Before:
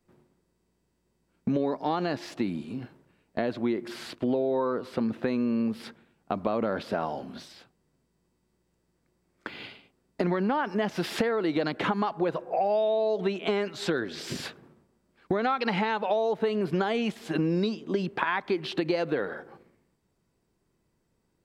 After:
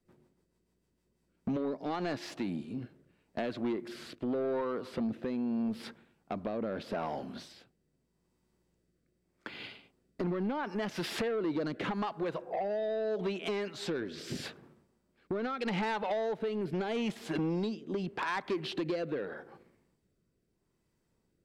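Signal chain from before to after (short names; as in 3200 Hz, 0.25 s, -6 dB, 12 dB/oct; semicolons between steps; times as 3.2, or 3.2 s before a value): rotary speaker horn 6.7 Hz, later 0.8 Hz, at 0.85; soft clip -25.5 dBFS, distortion -14 dB; gain -1.5 dB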